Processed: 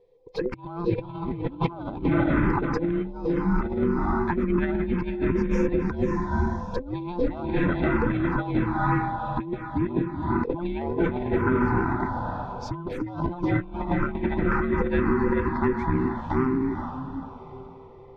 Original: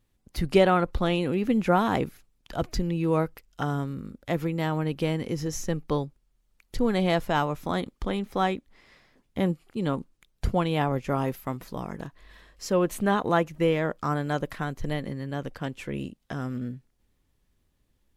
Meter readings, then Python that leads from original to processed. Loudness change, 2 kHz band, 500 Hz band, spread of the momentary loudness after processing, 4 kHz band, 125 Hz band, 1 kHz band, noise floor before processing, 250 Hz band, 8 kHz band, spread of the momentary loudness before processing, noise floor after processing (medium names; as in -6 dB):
+1.5 dB, +2.5 dB, +0.5 dB, 9 LU, -10.5 dB, +2.0 dB, +0.5 dB, -71 dBFS, +4.0 dB, under -15 dB, 13 LU, -44 dBFS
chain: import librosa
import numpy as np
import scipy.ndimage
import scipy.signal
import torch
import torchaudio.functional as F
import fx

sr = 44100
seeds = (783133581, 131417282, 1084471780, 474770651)

p1 = fx.band_invert(x, sr, width_hz=500)
p2 = fx.high_shelf(p1, sr, hz=5000.0, db=-10.0)
p3 = fx.notch(p2, sr, hz=2900.0, q=5.9)
p4 = p3 + fx.echo_diffused(p3, sr, ms=476, feedback_pct=47, wet_db=-5, dry=0)
p5 = fx.env_phaser(p4, sr, low_hz=250.0, high_hz=1900.0, full_db=-19.0)
p6 = fx.over_compress(p5, sr, threshold_db=-31.0, ratio=-0.5)
p7 = fx.air_absorb(p6, sr, metres=230.0)
y = F.gain(torch.from_numpy(p7), 7.5).numpy()